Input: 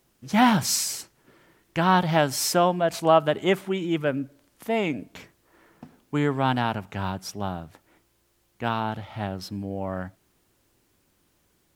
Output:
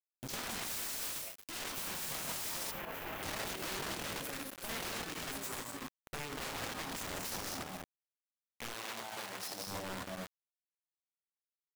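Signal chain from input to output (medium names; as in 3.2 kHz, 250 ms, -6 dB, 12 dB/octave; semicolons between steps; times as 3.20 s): compression 6:1, threshold -29 dBFS, peak gain reduction 15.5 dB; on a send: flutter echo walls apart 4.5 m, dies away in 0.38 s; on the sum: ever faster or slower copies 304 ms, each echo +6 st, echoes 3; treble shelf 2.7 kHz +5.5 dB; gated-style reverb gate 260 ms rising, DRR 3.5 dB; saturation -21.5 dBFS, distortion -15 dB; transient shaper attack +3 dB, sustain -9 dB; word length cut 6-bit, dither none; wavefolder -35.5 dBFS; 2.71–3.23 s: high-order bell 6.3 kHz -13.5 dB; peak limiter -50 dBFS, peak gain reduction 11 dB; 8.74–9.67 s: high-pass 480 Hz 6 dB/octave; trim +16 dB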